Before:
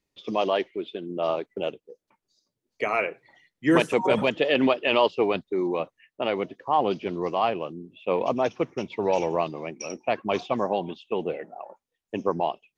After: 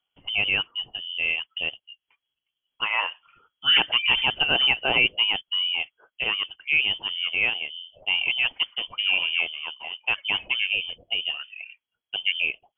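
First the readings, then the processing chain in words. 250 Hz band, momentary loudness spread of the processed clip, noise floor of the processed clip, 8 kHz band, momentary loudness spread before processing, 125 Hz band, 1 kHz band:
-16.5 dB, 12 LU, under -85 dBFS, no reading, 12 LU, -8.5 dB, -8.0 dB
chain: frequency inversion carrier 3.3 kHz

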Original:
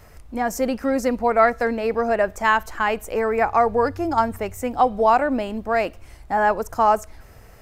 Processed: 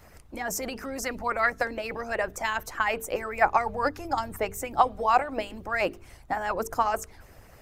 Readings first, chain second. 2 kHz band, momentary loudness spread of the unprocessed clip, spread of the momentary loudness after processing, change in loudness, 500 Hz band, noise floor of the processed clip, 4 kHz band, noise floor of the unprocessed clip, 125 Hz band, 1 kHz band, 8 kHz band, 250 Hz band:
-4.0 dB, 8 LU, 10 LU, -7.0 dB, -9.5 dB, -52 dBFS, -2.0 dB, -47 dBFS, -6.0 dB, -6.5 dB, +1.0 dB, -12.0 dB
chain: harmonic-percussive split harmonic -16 dB; hum notches 50/100/150/200/250/300/350/400/450 Hz; trim +1.5 dB

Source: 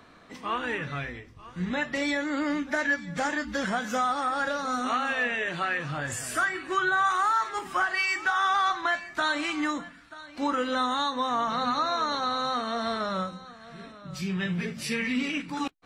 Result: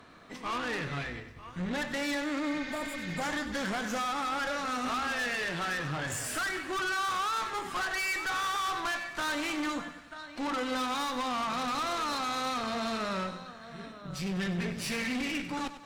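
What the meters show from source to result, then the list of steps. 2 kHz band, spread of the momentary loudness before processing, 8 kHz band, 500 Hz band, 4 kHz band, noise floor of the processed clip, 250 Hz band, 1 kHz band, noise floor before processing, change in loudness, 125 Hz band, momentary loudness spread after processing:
-5.0 dB, 11 LU, +0.5 dB, -4.5 dB, -2.0 dB, -48 dBFS, -3.5 dB, -5.5 dB, -51 dBFS, -4.5 dB, -2.0 dB, 8 LU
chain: valve stage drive 33 dB, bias 0.65; spectral replace 2.49–3.19 s, 1.3–6.9 kHz before; bit-crushed delay 97 ms, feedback 55%, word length 12-bit, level -12 dB; trim +3 dB

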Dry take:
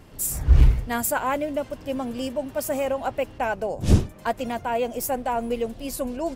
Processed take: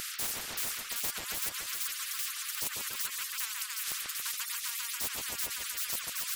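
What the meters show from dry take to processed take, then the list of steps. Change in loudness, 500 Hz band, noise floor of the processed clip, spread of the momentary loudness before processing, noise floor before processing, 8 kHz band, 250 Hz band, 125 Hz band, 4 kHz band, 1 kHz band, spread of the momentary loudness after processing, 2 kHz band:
-8.0 dB, -28.0 dB, -41 dBFS, 9 LU, -44 dBFS, +0.5 dB, -28.0 dB, -34.0 dB, +4.5 dB, -18.0 dB, 1 LU, -5.0 dB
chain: steep high-pass 1.3 kHz 96 dB/octave; reverb removal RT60 1.5 s; treble shelf 4.2 kHz +6 dB; in parallel at -0.5 dB: compression 6:1, threshold -38 dBFS, peak gain reduction 19 dB; on the sum: hard clipper -19 dBFS, distortion -11 dB; on a send: two-band feedback delay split 2.6 kHz, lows 141 ms, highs 385 ms, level -3.5 dB; on the sum: spectrum-flattening compressor 10:1; trim -4.5 dB

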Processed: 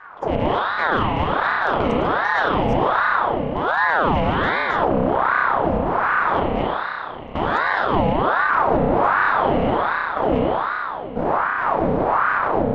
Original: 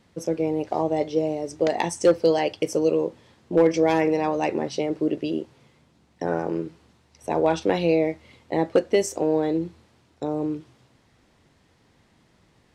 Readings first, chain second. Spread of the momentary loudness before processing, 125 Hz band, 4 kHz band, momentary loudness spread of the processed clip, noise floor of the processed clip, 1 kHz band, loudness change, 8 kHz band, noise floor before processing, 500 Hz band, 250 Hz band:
11 LU, +8.0 dB, +5.5 dB, 5 LU, -30 dBFS, +13.5 dB, +4.5 dB, under -15 dB, -62 dBFS, +1.0 dB, +1.5 dB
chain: rattle on loud lows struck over -37 dBFS, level -18 dBFS; wind noise 470 Hz -19 dBFS; gate -23 dBFS, range -13 dB; peaking EQ 97 Hz +13.5 dB 3 oct; level held to a coarse grid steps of 20 dB; distance through air 110 m; spring tank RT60 2.8 s, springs 31 ms, chirp 25 ms, DRR -5.5 dB; compression, threshold -8 dBFS, peak gain reduction 15.5 dB; high-pass 73 Hz 12 dB/octave; peak limiter -7.5 dBFS, peak gain reduction 9 dB; ring modulator with a swept carrier 850 Hz, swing 60%, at 1.3 Hz

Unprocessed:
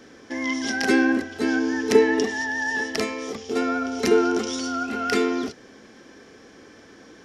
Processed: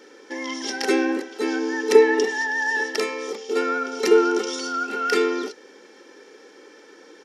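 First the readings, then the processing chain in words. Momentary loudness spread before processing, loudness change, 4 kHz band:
9 LU, +1.0 dB, +1.0 dB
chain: brick-wall FIR high-pass 190 Hz; comb 2.2 ms, depth 69%; trim -1 dB

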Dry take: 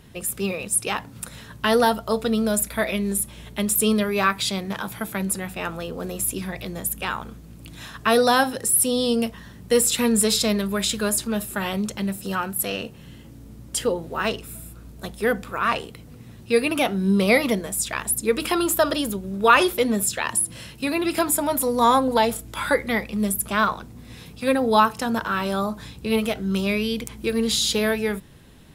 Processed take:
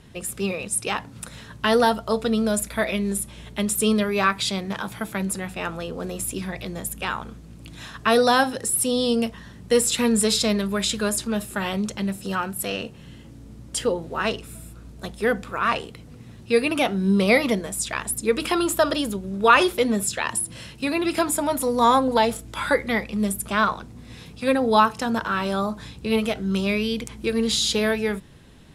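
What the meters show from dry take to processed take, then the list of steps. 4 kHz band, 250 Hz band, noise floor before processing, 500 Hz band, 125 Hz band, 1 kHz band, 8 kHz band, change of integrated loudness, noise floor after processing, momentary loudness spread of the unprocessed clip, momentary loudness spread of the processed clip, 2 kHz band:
0.0 dB, 0.0 dB, -44 dBFS, 0.0 dB, 0.0 dB, 0.0 dB, -2.5 dB, -0.5 dB, -44 dBFS, 12 LU, 12 LU, 0.0 dB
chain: low-pass 9.6 kHz 12 dB/octave

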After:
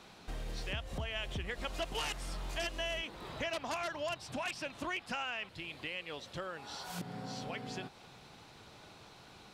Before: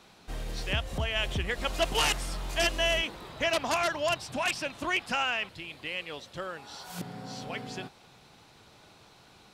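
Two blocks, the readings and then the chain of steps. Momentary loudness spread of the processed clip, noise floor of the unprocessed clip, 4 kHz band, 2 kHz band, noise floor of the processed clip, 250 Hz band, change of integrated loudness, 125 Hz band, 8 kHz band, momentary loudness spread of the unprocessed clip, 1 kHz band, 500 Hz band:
18 LU, -57 dBFS, -9.5 dB, -9.0 dB, -57 dBFS, -6.0 dB, -9.0 dB, -7.0 dB, -10.5 dB, 14 LU, -8.5 dB, -8.5 dB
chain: treble shelf 7.8 kHz -4.5 dB; compression 2.5:1, threshold -41 dBFS, peak gain reduction 12.5 dB; trim +1 dB

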